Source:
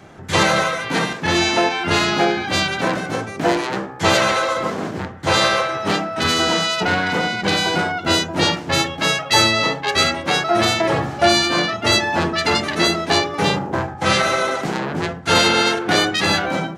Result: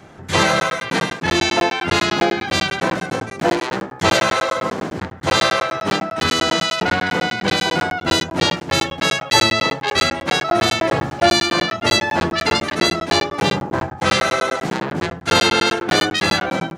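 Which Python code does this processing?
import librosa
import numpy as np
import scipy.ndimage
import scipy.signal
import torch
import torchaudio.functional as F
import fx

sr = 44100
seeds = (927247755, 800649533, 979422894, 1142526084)

y = fx.buffer_crackle(x, sr, first_s=0.6, period_s=0.1, block=512, kind='zero')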